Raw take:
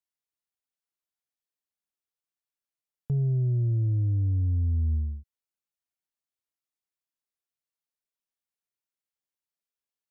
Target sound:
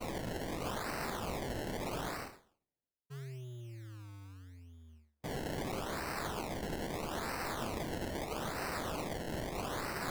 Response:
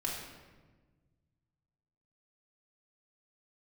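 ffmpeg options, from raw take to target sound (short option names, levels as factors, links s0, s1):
-af "areverse,acompressor=mode=upward:threshold=0.0282:ratio=2.5,areverse,aderivative,acrusher=samples=25:mix=1:aa=0.000001:lfo=1:lforange=25:lforate=0.78,agate=range=0.0224:threshold=0.00178:ratio=3:detection=peak,volume=6.68"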